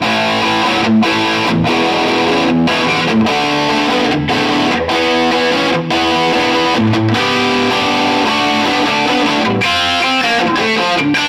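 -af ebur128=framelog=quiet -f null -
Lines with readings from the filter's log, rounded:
Integrated loudness:
  I:         -12.4 LUFS
  Threshold: -22.4 LUFS
Loudness range:
  LRA:         0.5 LU
  Threshold: -32.4 LUFS
  LRA low:   -12.7 LUFS
  LRA high:  -12.2 LUFS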